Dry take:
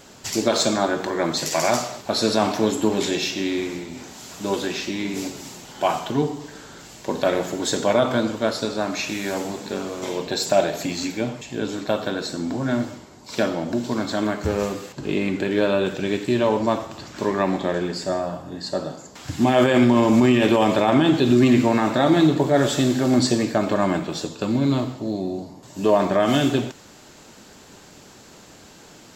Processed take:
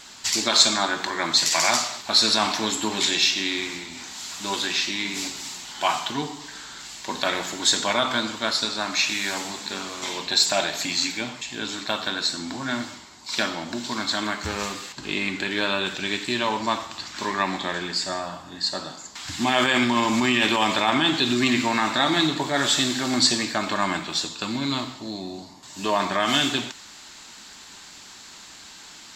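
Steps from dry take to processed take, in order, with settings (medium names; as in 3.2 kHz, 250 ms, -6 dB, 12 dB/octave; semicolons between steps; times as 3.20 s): ten-band graphic EQ 125 Hz -7 dB, 500 Hz -9 dB, 1 kHz +6 dB, 2 kHz +6 dB, 4 kHz +10 dB, 8 kHz +7 dB; trim -4 dB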